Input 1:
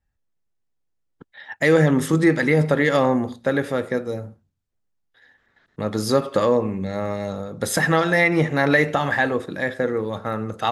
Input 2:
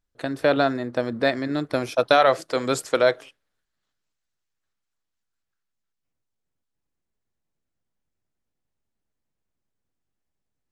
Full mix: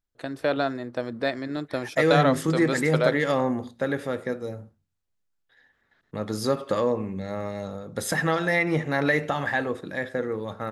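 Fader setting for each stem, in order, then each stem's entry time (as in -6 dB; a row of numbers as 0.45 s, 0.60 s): -5.5 dB, -5.0 dB; 0.35 s, 0.00 s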